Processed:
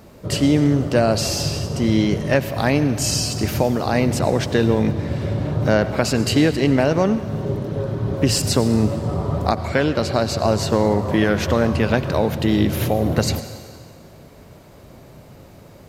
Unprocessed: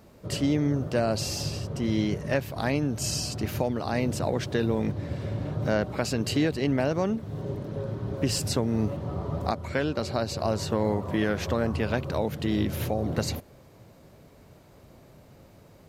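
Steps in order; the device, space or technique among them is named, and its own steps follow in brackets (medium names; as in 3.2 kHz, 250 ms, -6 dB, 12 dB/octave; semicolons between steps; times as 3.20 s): saturated reverb return (on a send at -10 dB: reverberation RT60 1.7 s, pre-delay 82 ms + saturation -23 dBFS, distortion -15 dB); on the sum: trim +8.5 dB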